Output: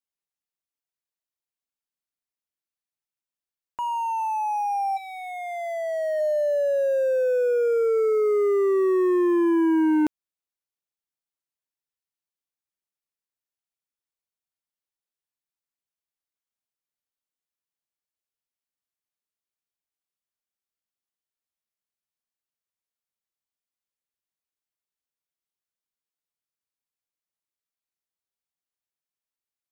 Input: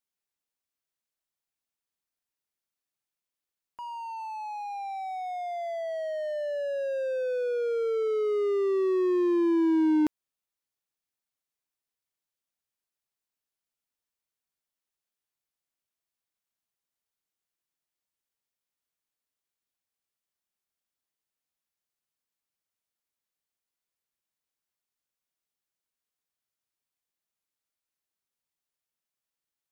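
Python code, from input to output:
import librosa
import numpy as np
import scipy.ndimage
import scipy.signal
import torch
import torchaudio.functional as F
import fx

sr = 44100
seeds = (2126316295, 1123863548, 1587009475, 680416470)

y = fx.bandpass_q(x, sr, hz=fx.line((4.96, 3400.0), (6.19, 900.0)), q=1.3, at=(4.96, 6.19), fade=0.02)
y = fx.leveller(y, sr, passes=3)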